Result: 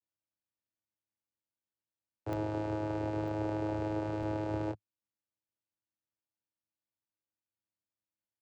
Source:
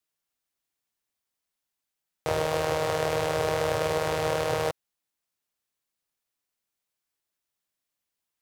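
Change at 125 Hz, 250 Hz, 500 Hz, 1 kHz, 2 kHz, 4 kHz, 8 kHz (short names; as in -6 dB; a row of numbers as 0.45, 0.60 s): -3.0 dB, +3.5 dB, -11.0 dB, -10.5 dB, -15.0 dB, -21.0 dB, under -20 dB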